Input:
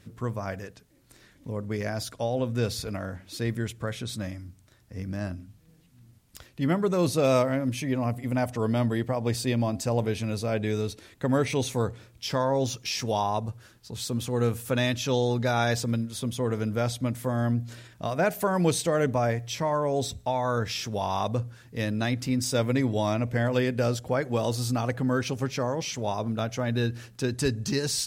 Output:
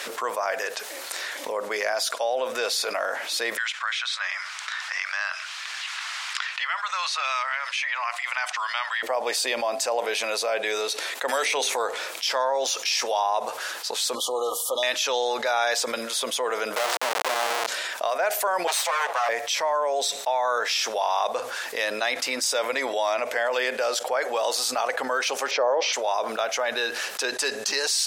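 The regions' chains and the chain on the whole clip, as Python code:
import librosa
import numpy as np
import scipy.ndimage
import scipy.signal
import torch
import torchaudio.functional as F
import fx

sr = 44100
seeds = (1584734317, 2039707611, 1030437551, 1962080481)

y = fx.chain(x, sr, fx.cheby2_highpass(hz=340.0, order=4, stop_db=60),
    fx.air_absorb(metres=120.0),
    fx.band_squash(depth_pct=70), at=(3.57, 9.03))
y = fx.chain(y, sr, fx.hum_notches(base_hz=50, count=9),
    fx.band_squash(depth_pct=100), at=(11.28, 11.76))
y = fx.chain(y, sr, fx.brickwall_bandstop(low_hz=1300.0, high_hz=2900.0),
    fx.notch_comb(f0_hz=220.0), at=(14.15, 14.83))
y = fx.chain(y, sr, fx.block_float(bits=3),
    fx.peak_eq(hz=3300.0, db=-9.5, octaves=1.5),
    fx.schmitt(flips_db=-33.5), at=(16.76, 17.67))
y = fx.chain(y, sr, fx.lower_of_two(delay_ms=7.3),
    fx.highpass(hz=560.0, slope=24), at=(18.67, 19.29))
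y = fx.chain(y, sr, fx.lowpass(hz=5600.0, slope=24),
    fx.peak_eq(hz=480.0, db=13.0, octaves=2.3), at=(25.51, 25.93))
y = scipy.signal.sosfilt(scipy.signal.butter(4, 580.0, 'highpass', fs=sr, output='sos'), y)
y = fx.high_shelf(y, sr, hz=12000.0, db=-7.5)
y = fx.env_flatten(y, sr, amount_pct=70)
y = y * 10.0 ** (-1.5 / 20.0)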